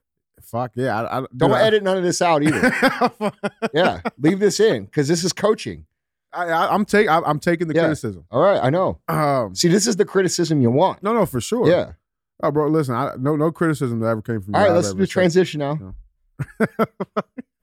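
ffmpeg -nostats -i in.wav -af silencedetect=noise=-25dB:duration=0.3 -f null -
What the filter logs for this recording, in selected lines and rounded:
silence_start: 0.00
silence_end: 0.54 | silence_duration: 0.54
silence_start: 5.74
silence_end: 6.35 | silence_duration: 0.60
silence_start: 11.84
silence_end: 12.43 | silence_duration: 0.59
silence_start: 15.78
silence_end: 16.40 | silence_duration: 0.62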